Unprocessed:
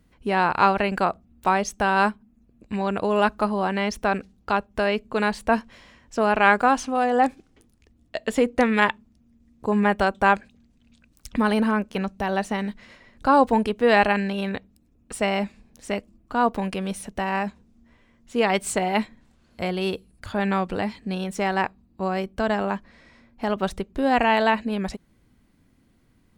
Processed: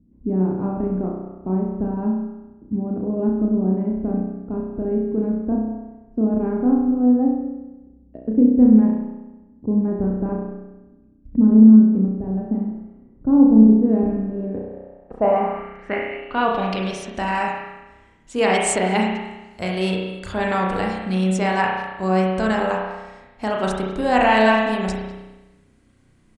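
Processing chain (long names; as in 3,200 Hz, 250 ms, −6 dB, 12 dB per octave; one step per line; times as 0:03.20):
far-end echo of a speakerphone 200 ms, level −14 dB
spring reverb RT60 1.1 s, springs 32 ms, chirp 75 ms, DRR −1.5 dB
low-pass filter sweep 270 Hz → 8,300 Hz, 0:14.28–0:17.30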